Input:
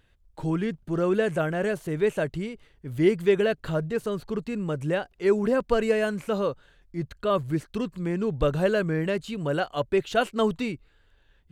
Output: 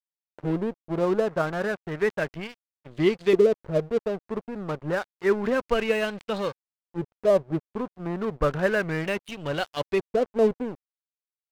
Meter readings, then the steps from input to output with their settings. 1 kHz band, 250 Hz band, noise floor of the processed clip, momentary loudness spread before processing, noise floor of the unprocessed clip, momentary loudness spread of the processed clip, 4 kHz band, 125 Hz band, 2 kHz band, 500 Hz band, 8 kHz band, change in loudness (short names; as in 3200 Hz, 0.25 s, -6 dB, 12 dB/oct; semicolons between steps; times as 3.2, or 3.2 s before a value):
-0.5 dB, -1.5 dB, under -85 dBFS, 9 LU, -62 dBFS, 12 LU, 0.0 dB, -3.0 dB, +1.5 dB, +0.5 dB, n/a, 0.0 dB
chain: LFO low-pass saw up 0.3 Hz 390–5200 Hz; crossover distortion -34 dBFS